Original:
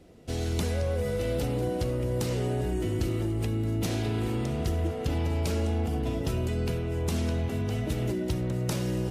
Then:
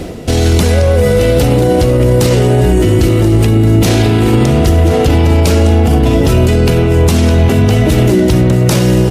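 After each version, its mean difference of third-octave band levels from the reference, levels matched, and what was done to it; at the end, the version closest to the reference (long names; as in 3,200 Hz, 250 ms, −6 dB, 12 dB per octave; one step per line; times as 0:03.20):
1.0 dB: reversed playback
upward compression, threshold −33 dBFS
reversed playback
single-tap delay 1,032 ms −16 dB
boost into a limiter +27 dB
level −1 dB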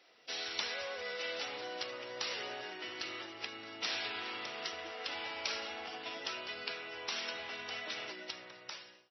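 14.0 dB: fade-out on the ending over 1.12 s
high-pass filter 1,300 Hz 12 dB per octave
level +4 dB
MP3 24 kbit/s 22,050 Hz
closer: first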